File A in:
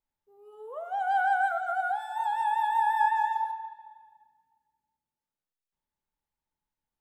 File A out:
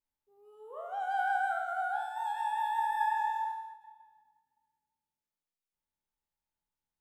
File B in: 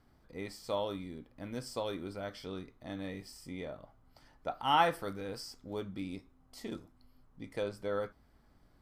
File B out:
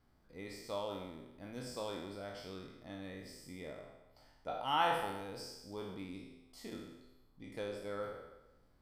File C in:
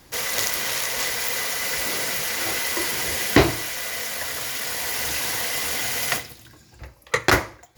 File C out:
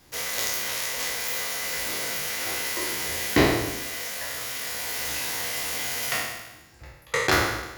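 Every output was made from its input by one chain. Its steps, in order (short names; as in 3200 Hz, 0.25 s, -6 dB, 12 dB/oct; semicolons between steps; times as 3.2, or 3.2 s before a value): spectral trails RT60 1.03 s; de-hum 56.13 Hz, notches 35; ending taper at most 140 dB/s; gain -6.5 dB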